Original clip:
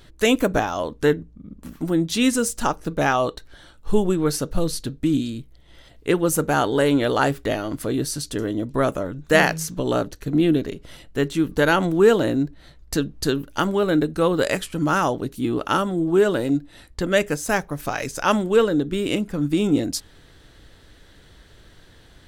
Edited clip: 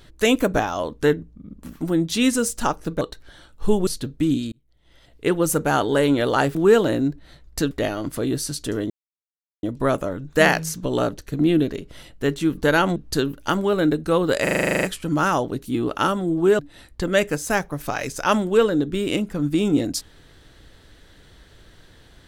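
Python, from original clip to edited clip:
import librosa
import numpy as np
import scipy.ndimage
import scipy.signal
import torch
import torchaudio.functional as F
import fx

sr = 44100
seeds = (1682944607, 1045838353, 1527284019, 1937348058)

y = fx.edit(x, sr, fx.cut(start_s=3.01, length_s=0.25),
    fx.cut(start_s=4.12, length_s=0.58),
    fx.fade_in_span(start_s=5.35, length_s=0.85),
    fx.insert_silence(at_s=8.57, length_s=0.73),
    fx.move(start_s=11.9, length_s=1.16, to_s=7.38),
    fx.stutter(start_s=14.53, slice_s=0.04, count=11),
    fx.cut(start_s=16.29, length_s=0.29), tone=tone)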